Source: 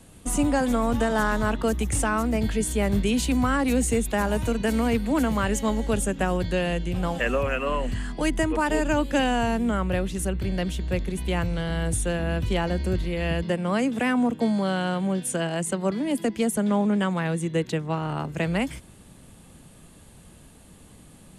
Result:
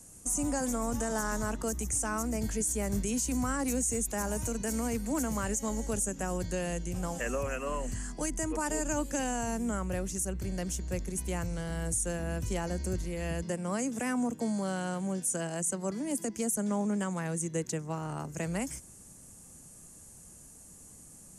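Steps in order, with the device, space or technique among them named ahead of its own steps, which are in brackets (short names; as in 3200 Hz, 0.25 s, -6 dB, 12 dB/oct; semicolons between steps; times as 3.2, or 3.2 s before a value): over-bright horn tweeter (resonant high shelf 4800 Hz +10 dB, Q 3; limiter -14 dBFS, peak gain reduction 10 dB); gain -8 dB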